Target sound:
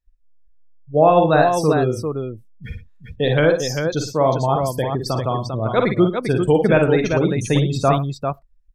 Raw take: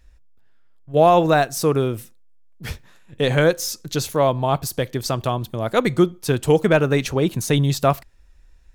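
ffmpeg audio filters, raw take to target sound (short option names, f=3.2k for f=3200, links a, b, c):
-filter_complex "[0:a]afftdn=nr=28:nf=-27,asplit=2[a][b];[b]aecho=0:1:45|55|112|397:0.376|0.447|0.158|0.501[c];[a][c]amix=inputs=2:normalize=0"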